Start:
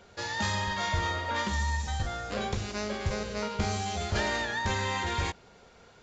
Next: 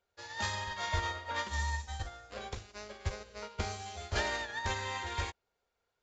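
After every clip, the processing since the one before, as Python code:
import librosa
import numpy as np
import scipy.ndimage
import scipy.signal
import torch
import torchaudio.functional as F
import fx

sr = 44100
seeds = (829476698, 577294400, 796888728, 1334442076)

y = fx.peak_eq(x, sr, hz=180.0, db=-10.5, octaves=1.3)
y = fx.upward_expand(y, sr, threshold_db=-45.0, expansion=2.5)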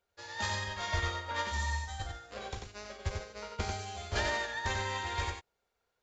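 y = x + 10.0 ** (-5.0 / 20.0) * np.pad(x, (int(92 * sr / 1000.0), 0))[:len(x)]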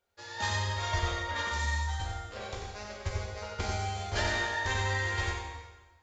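y = fx.rev_plate(x, sr, seeds[0], rt60_s=1.3, hf_ratio=0.85, predelay_ms=0, drr_db=0.5)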